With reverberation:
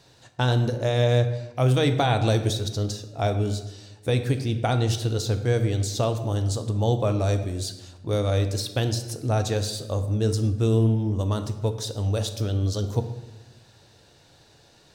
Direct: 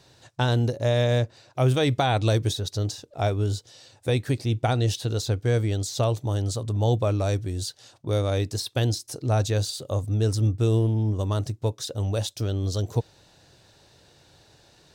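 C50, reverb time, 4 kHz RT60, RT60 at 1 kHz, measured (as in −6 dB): 10.0 dB, 1.1 s, 0.70 s, 1.0 s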